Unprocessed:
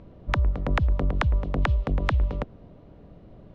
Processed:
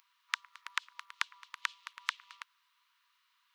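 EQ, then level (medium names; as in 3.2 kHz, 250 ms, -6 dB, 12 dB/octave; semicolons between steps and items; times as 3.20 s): brick-wall FIR high-pass 940 Hz; differentiator; +7.0 dB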